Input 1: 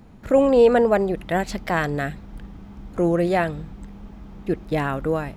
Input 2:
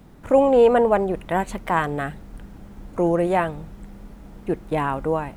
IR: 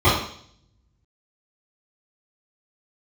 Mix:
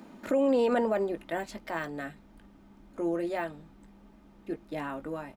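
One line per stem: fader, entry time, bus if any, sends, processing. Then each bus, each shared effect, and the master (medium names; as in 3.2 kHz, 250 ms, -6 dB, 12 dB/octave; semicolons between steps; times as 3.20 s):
+2.5 dB, 0.00 s, no send, high-pass 200 Hz 24 dB/octave; comb 3.3 ms, depth 38%; auto duck -15 dB, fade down 1.55 s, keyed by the second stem
-19.0 dB, 19 ms, polarity flipped, no send, de-esser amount 85%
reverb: none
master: peak limiter -18 dBFS, peak gain reduction 11.5 dB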